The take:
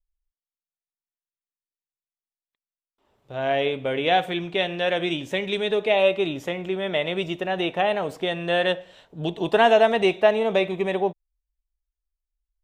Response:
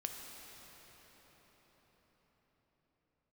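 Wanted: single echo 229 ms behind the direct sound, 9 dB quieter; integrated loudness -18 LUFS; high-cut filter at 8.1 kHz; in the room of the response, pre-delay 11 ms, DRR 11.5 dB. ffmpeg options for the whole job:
-filter_complex "[0:a]lowpass=8100,aecho=1:1:229:0.355,asplit=2[s0][s1];[1:a]atrim=start_sample=2205,adelay=11[s2];[s1][s2]afir=irnorm=-1:irlink=0,volume=0.282[s3];[s0][s3]amix=inputs=2:normalize=0,volume=1.68"

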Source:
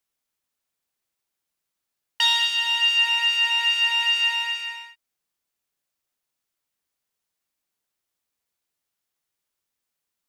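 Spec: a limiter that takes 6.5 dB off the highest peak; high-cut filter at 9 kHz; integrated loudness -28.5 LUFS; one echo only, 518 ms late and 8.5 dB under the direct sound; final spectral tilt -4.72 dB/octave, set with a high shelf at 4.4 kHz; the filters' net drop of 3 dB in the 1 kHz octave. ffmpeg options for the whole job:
-af "lowpass=9000,equalizer=f=1000:t=o:g=-3.5,highshelf=f=4400:g=6,alimiter=limit=0.188:level=0:latency=1,aecho=1:1:518:0.376,volume=0.376"

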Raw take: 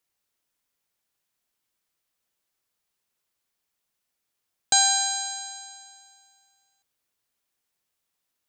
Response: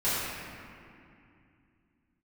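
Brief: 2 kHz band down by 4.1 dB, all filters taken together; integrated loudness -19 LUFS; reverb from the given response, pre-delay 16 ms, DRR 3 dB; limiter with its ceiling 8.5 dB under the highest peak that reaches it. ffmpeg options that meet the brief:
-filter_complex "[0:a]equalizer=f=2000:t=o:g=-6,alimiter=limit=0.168:level=0:latency=1,asplit=2[s0][s1];[1:a]atrim=start_sample=2205,adelay=16[s2];[s1][s2]afir=irnorm=-1:irlink=0,volume=0.178[s3];[s0][s3]amix=inputs=2:normalize=0,volume=2.37"

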